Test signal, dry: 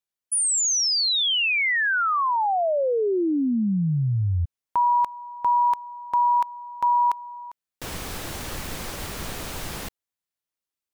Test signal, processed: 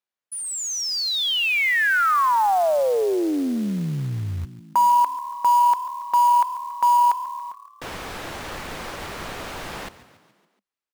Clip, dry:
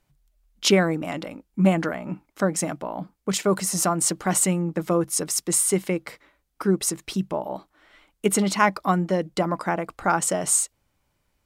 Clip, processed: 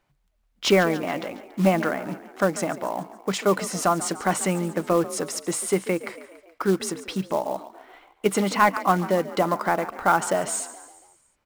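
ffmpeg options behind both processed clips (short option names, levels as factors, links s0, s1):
-filter_complex "[0:a]asplit=6[s0][s1][s2][s3][s4][s5];[s1]adelay=141,afreqshift=37,volume=0.15[s6];[s2]adelay=282,afreqshift=74,volume=0.0822[s7];[s3]adelay=423,afreqshift=111,volume=0.0452[s8];[s4]adelay=564,afreqshift=148,volume=0.0248[s9];[s5]adelay=705,afreqshift=185,volume=0.0136[s10];[s0][s6][s7][s8][s9][s10]amix=inputs=6:normalize=0,asplit=2[s11][s12];[s12]highpass=f=720:p=1,volume=3.55,asoftclip=type=tanh:threshold=0.668[s13];[s11][s13]amix=inputs=2:normalize=0,lowpass=f=1600:p=1,volume=0.501,acrusher=bits=5:mode=log:mix=0:aa=0.000001"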